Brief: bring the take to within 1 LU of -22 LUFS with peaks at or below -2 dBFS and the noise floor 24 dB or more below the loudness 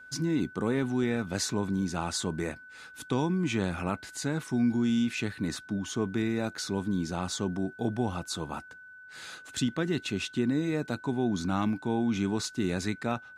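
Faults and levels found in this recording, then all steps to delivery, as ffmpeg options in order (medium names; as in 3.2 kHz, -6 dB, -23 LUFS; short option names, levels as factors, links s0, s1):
steady tone 1.5 kHz; tone level -47 dBFS; loudness -30.5 LUFS; peak level -15.0 dBFS; loudness target -22.0 LUFS
-> -af "bandreject=f=1500:w=30"
-af "volume=2.66"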